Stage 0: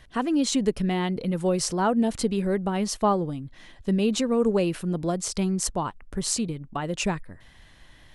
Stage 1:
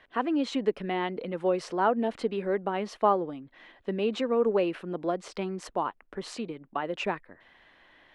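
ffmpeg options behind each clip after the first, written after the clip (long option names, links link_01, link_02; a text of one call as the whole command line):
ffmpeg -i in.wav -filter_complex "[0:a]acrossover=split=270 3300:gain=0.0891 1 0.0631[link_01][link_02][link_03];[link_01][link_02][link_03]amix=inputs=3:normalize=0" out.wav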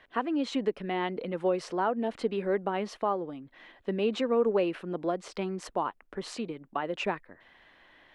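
ffmpeg -i in.wav -af "alimiter=limit=-17dB:level=0:latency=1:release=450" out.wav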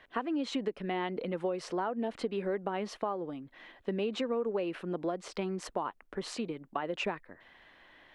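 ffmpeg -i in.wav -af "acompressor=threshold=-29dB:ratio=6" out.wav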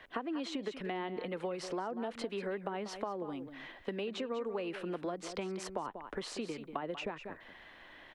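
ffmpeg -i in.wav -filter_complex "[0:a]aecho=1:1:189:0.2,acrossover=split=270|870[link_01][link_02][link_03];[link_01]acompressor=threshold=-51dB:ratio=4[link_04];[link_02]acompressor=threshold=-43dB:ratio=4[link_05];[link_03]acompressor=threshold=-47dB:ratio=4[link_06];[link_04][link_05][link_06]amix=inputs=3:normalize=0,volume=3.5dB" out.wav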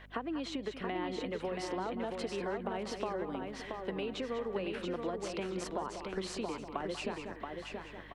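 ffmpeg -i in.wav -filter_complex "[0:a]asplit=2[link_01][link_02];[link_02]aecho=0:1:678|1356|2034|2712:0.596|0.191|0.061|0.0195[link_03];[link_01][link_03]amix=inputs=2:normalize=0,aeval=exprs='val(0)+0.00178*(sin(2*PI*50*n/s)+sin(2*PI*2*50*n/s)/2+sin(2*PI*3*50*n/s)/3+sin(2*PI*4*50*n/s)/4+sin(2*PI*5*50*n/s)/5)':channel_layout=same" out.wav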